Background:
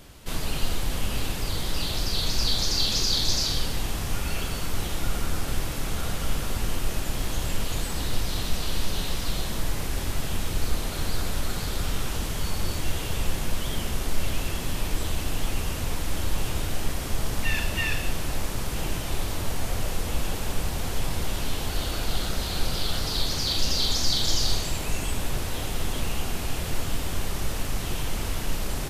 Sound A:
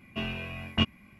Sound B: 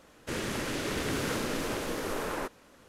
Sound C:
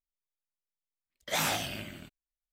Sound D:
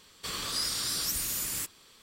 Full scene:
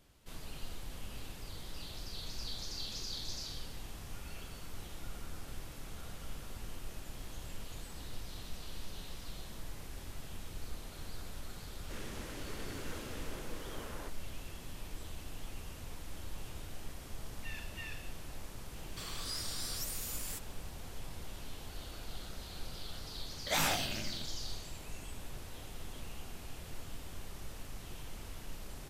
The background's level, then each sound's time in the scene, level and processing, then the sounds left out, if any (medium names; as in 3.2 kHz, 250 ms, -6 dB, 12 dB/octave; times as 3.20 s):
background -17.5 dB
11.62 s: add B -14 dB
18.73 s: add D -9.5 dB
22.19 s: add C -2 dB
not used: A